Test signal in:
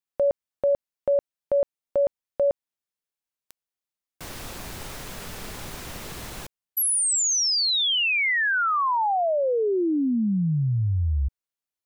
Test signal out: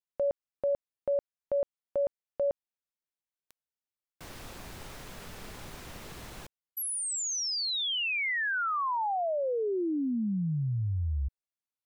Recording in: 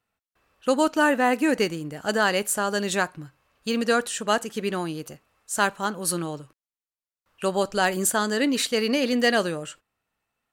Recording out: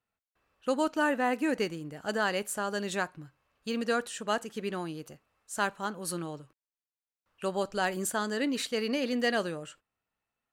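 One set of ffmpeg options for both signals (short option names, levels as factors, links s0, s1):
-af "highshelf=f=5200:g=-4.5,volume=0.447"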